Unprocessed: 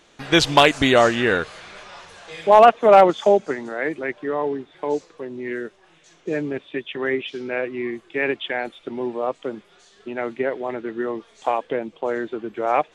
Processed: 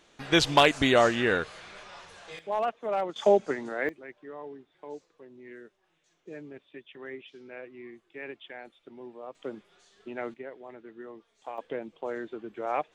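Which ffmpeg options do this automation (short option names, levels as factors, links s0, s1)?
-af "asetnsamples=n=441:p=0,asendcmd='2.39 volume volume -18dB;3.16 volume volume -5dB;3.89 volume volume -18dB;9.35 volume volume -8.5dB;10.34 volume volume -18dB;11.58 volume volume -10dB',volume=0.501"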